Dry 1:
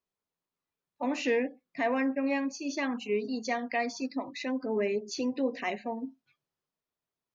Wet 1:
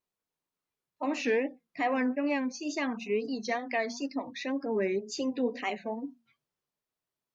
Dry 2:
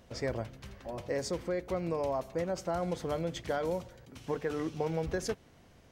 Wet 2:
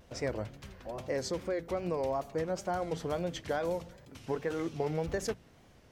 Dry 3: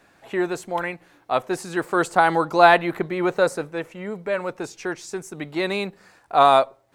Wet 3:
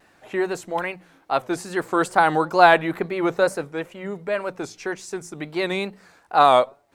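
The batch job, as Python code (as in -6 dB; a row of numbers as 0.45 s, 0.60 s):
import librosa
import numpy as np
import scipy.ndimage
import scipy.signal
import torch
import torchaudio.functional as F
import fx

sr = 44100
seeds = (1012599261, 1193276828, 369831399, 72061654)

y = fx.hum_notches(x, sr, base_hz=60, count=4)
y = fx.wow_flutter(y, sr, seeds[0], rate_hz=2.1, depth_cents=110.0)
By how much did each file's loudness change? 0.0 LU, 0.0 LU, 0.0 LU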